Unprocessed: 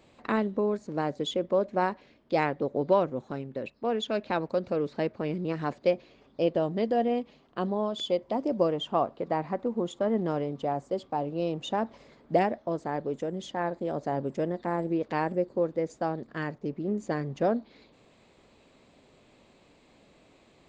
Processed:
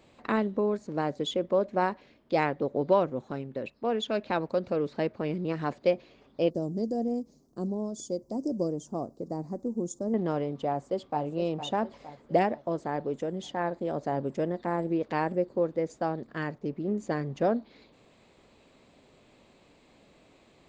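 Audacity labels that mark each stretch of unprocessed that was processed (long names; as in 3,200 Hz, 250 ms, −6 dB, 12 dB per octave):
6.500000	10.140000	drawn EQ curve 310 Hz 0 dB, 3,000 Hz −28 dB, 5,800 Hz +9 dB
10.670000	11.230000	delay throw 460 ms, feedback 55%, level −11 dB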